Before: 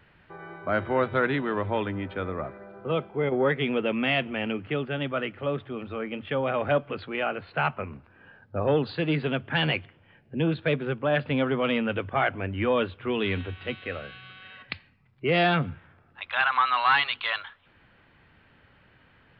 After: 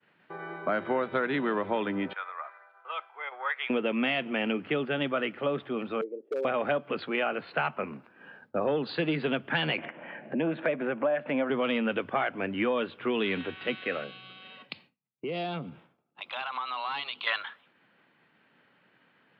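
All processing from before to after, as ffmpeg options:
-filter_complex "[0:a]asettb=1/sr,asplit=3[a][b][c];[a]atrim=end=2.134[d];[b]atrim=start=2.13:end=3.7,asetpts=PTS-STARTPTS,afade=t=in:d=0.004:c=qsin,afade=t=out:st=1.566:d=0.004:c=qsin,highpass=f=980:w=0.5412,highpass=f=980:w=1.3066,highshelf=f=2.4k:g=-10[e];[c]atrim=start=3.696[f];[d][e]acrossfade=d=0.004:c1=hsin:c2=qsin[g];[g][f]acrossfade=d=0.004:c1=qsin:c2=hsin,asettb=1/sr,asplit=3[h][i][j];[h]atrim=end=6.014[k];[i]atrim=start=6.01:end=6.45,asetpts=PTS-STARTPTS,afade=t=in:d=0.004:c=qsin,afade=t=out:st=0.436:d=0.004:c=qsin,asuperpass=centerf=420:order=4:qfactor=2.9,aeval=exprs='0.0398*(abs(mod(val(0)/0.0398+3,4)-2)-1)':c=same[l];[j]atrim=start=6.446[m];[k][l]acrossfade=d=0.004:c1=hsin:c2=qsin[n];[n][m]acrossfade=d=0.004:c1=qsin:c2=hsin,asettb=1/sr,asplit=3[o][p][q];[o]atrim=end=9.784[r];[p]atrim=start=9.78:end=11.5,asetpts=PTS-STARTPTS,afade=t=in:d=0.004:c=qsin,afade=t=out:st=1.716:d=0.004:c=qsin,agate=range=-9dB:threshold=-54dB:ratio=16:release=100:detection=peak,highpass=230,equalizer=f=420:t=q:w=4:g=-8,equalizer=f=610:t=q:w=4:g=7,equalizer=f=1.3k:t=q:w=4:g=-3,lowpass=f=2.4k:w=0.5412,lowpass=f=2.4k:w=1.3066,acompressor=mode=upward:threshold=-25dB:ratio=2.5:attack=3.2:release=140:knee=2.83:detection=peak[s];[q]atrim=start=11.496[t];[r][s]acrossfade=d=0.004:c1=hsin:c2=qsin[u];[u][t]acrossfade=d=0.004:c1=qsin:c2=hsin,asettb=1/sr,asplit=3[v][w][x];[v]atrim=end=14.044[y];[w]atrim=start=14.04:end=17.27,asetpts=PTS-STARTPTS,afade=t=in:d=0.004:c=qsin,afade=t=out:st=3.226:d=0.004:c=qsin,equalizer=f=1.7k:w=1.9:g=-13.5,acompressor=threshold=-36dB:ratio=3:attack=3.2:release=140:knee=1:detection=peak[z];[x]atrim=start=17.266[aa];[y][z]acrossfade=d=0.004:c1=hsin:c2=qsin[ab];[ab][aa]acrossfade=d=0.004:c1=qsin:c2=hsin,highpass=f=170:w=0.5412,highpass=f=170:w=1.3066,agate=range=-33dB:threshold=-53dB:ratio=3:detection=peak,acompressor=threshold=-27dB:ratio=10,volume=3dB"

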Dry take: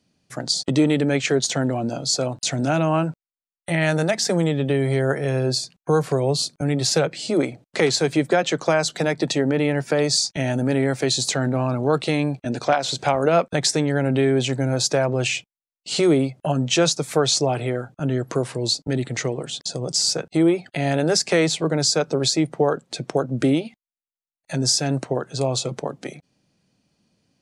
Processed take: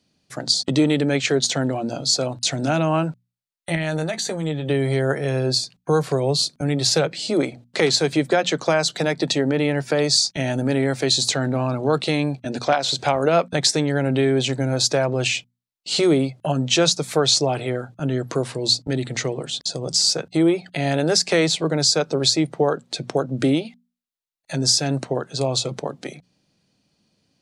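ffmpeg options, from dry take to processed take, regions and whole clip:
-filter_complex "[0:a]asettb=1/sr,asplit=3[a][b][c];[a]atrim=end=3.754[d];[b]atrim=start=3.75:end=4.69,asetpts=PTS-STARTPTS,afade=t=in:d=0.004:c=qsin,afade=t=out:st=0.936:d=0.004:c=qsin,acompressor=threshold=-22dB:ratio=5:attack=3.2:release=140:knee=1:detection=peak,asuperstop=centerf=5200:order=8:qfactor=5.7,asplit=2[e][f];[f]adelay=13,volume=-8.5dB[g];[e][g]amix=inputs=2:normalize=0,atrim=end_sample=41454[h];[c]atrim=start=4.686[i];[d][h]acrossfade=d=0.004:c1=hsin:c2=qsin[j];[j][i]acrossfade=d=0.004:c1=qsin:c2=hsin,equalizer=f=4k:t=o:w=0.76:g=4.5,bandreject=f=60:t=h:w=6,bandreject=f=120:t=h:w=6,bandreject=f=180:t=h:w=6,bandreject=f=240:t=h:w=6"

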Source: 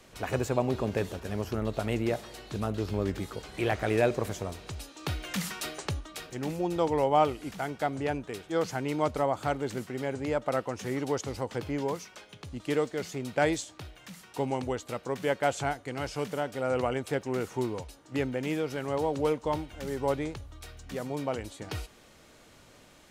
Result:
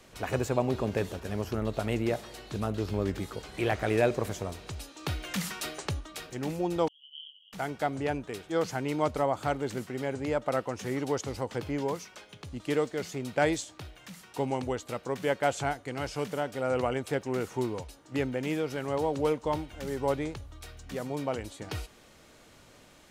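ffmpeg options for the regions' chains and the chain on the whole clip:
-filter_complex "[0:a]asettb=1/sr,asplit=3[a][b][c];[a]atrim=end=6.884[d];[b]atrim=start=6.88:end=7.53,asetpts=PTS-STARTPTS,afade=t=in:d=0.004:c=qsin,afade=t=out:st=0.646:d=0.004:c=qsin,asuperpass=centerf=3100:order=12:qfactor=6.2,asplit=2[e][f];[f]adelay=20,volume=-3dB[g];[e][g]amix=inputs=2:normalize=0,atrim=end_sample=28665[h];[c]atrim=start=7.526[i];[d][h]acrossfade=d=0.004:c1=hsin:c2=qsin[j];[j][i]acrossfade=d=0.004:c1=qsin:c2=hsin"

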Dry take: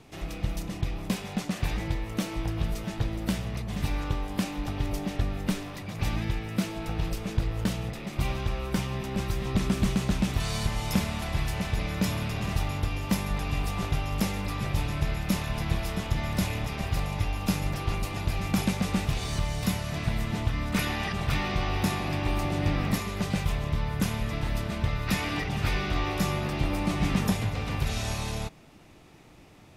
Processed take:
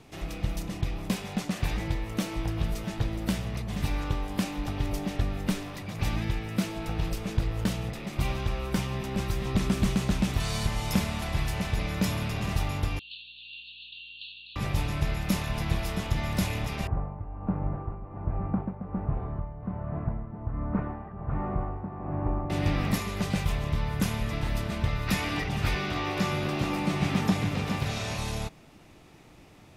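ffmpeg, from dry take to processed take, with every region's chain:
-filter_complex "[0:a]asettb=1/sr,asplit=3[a][b][c];[a]atrim=end=12.994[d];[b]atrim=start=12.99:end=14.56,asetpts=PTS-STARTPTS,afade=t=in:d=0.004:c=qsin,afade=t=out:st=1.566:d=0.004:c=qsin,asuperpass=centerf=3400:order=20:qfactor=1.9,aeval=exprs='val(0)+0.000355*(sin(2*PI*60*n/s)+sin(2*PI*2*60*n/s)/2+sin(2*PI*3*60*n/s)/3+sin(2*PI*4*60*n/s)/4+sin(2*PI*5*60*n/s)/5)':c=same[e];[c]atrim=start=14.556[f];[d][e]acrossfade=d=0.004:c1=hsin:c2=qsin[g];[g][f]acrossfade=d=0.004:c1=qsin:c2=hsin,asettb=1/sr,asplit=3[h][i][j];[h]atrim=end=16.874[k];[i]atrim=start=16.87:end=22.5,asetpts=PTS-STARTPTS,afade=t=in:d=0.004:c=qsin,afade=t=out:st=5.626:d=0.004:c=qsin,lowpass=f=1.2k:w=0.5412,lowpass=f=1.2k:w=1.3066,tremolo=f=1.3:d=0.67[l];[j]atrim=start=22.496[m];[k][l]acrossfade=d=0.004:c1=hsin:c2=qsin[n];[n][m]acrossfade=d=0.004:c1=qsin:c2=hsin,asettb=1/sr,asplit=3[o][p][q];[o]atrim=end=25.754[r];[p]atrim=start=25.75:end=28.18,asetpts=PTS-STARTPTS,afade=t=in:d=0.004:c=qsin,afade=t=out:st=2.426:d=0.004:c=qsin,acrossover=split=6200[s][t];[t]acompressor=threshold=-49dB:ratio=4:attack=1:release=60[u];[s][u]amix=inputs=2:normalize=0,highpass=100,aecho=1:1:417:0.473,atrim=end_sample=107163[v];[q]atrim=start=28.176[w];[r][v]acrossfade=d=0.004:c1=hsin:c2=qsin[x];[x][w]acrossfade=d=0.004:c1=qsin:c2=hsin"

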